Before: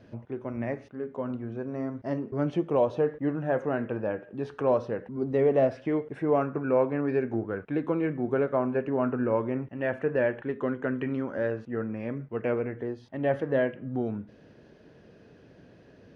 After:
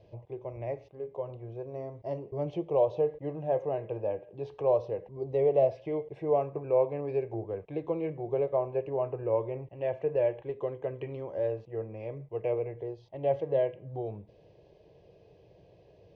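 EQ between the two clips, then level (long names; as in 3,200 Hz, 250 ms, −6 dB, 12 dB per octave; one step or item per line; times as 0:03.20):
high-frequency loss of the air 130 metres
phaser with its sweep stopped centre 590 Hz, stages 4
notch filter 1,800 Hz, Q 9.2
0.0 dB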